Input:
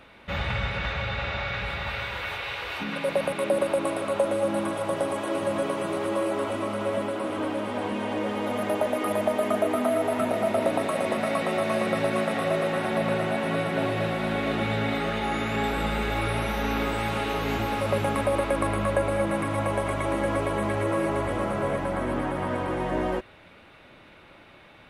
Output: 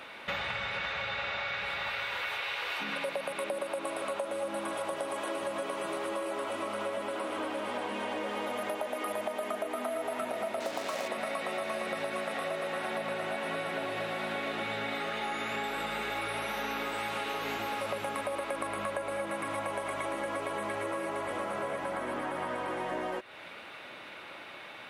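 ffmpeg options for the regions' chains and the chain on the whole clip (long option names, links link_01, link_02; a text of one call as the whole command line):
ffmpeg -i in.wav -filter_complex "[0:a]asettb=1/sr,asplit=3[link_01][link_02][link_03];[link_01]atrim=end=10.604[link_04];[link_02]atrim=start=10.6:end=11.08,asetpts=PTS-STARTPTS,afade=type=in:duration=0.004:curve=qsin,afade=type=out:start_time=0.476:duration=0.004:curve=qsin,lowpass=6500,acrusher=bits=4:mix=0:aa=0.5[link_05];[link_03]atrim=start=11.076[link_06];[link_04][link_05]acrossfade=duration=0.004:curve1=hsin:curve2=qsin[link_07];[link_07][link_06]acrossfade=duration=0.004:curve1=qsin:curve2=hsin,highpass=frequency=660:poles=1,acompressor=threshold=-40dB:ratio=6,volume=7.5dB" out.wav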